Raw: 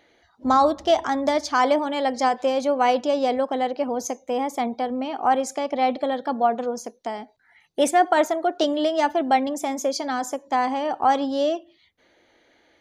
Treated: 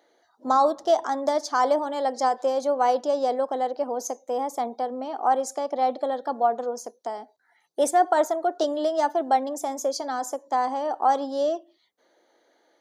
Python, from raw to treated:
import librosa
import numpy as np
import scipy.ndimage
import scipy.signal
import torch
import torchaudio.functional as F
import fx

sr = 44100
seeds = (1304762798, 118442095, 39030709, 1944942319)

y = scipy.signal.sosfilt(scipy.signal.butter(2, 390.0, 'highpass', fs=sr, output='sos'), x)
y = fx.peak_eq(y, sr, hz=2500.0, db=-15.0, octaves=0.95)